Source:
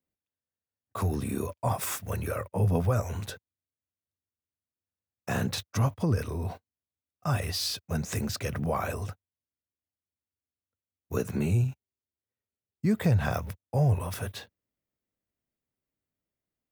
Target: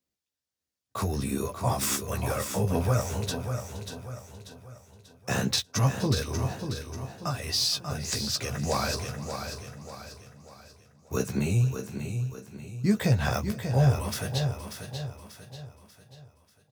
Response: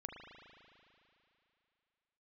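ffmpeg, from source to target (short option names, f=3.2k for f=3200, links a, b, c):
-filter_complex "[0:a]asplit=2[a][b];[b]aecho=0:1:589|1178|1767|2356|2945:0.398|0.167|0.0702|0.0295|0.0124[c];[a][c]amix=inputs=2:normalize=0,asettb=1/sr,asplit=3[d][e][f];[d]atrim=end=7.284[g];[e]atrim=start=7.28:end=8.63,asetpts=PTS-STARTPTS,afade=t=in:d=0.004:c=qsin,afade=t=out:st=1.346:d=0.004:c=qsin,acompressor=threshold=-30dB:ratio=6[h];[f]atrim=start=8.626[i];[g][h]acrossfade=d=0.004:c1=hsin:c2=qsin[j];[j][i]acrossfade=d=0.004:c1=qsin:c2=hsin,equalizer=f=5.3k:t=o:w=1.4:g=8.5,asplit=2[k][l];[l]adelay=15,volume=-5.5dB[m];[k][m]amix=inputs=2:normalize=0,asplit=2[n][o];[o]aecho=0:1:469|629:0.106|0.126[p];[n][p]amix=inputs=2:normalize=0"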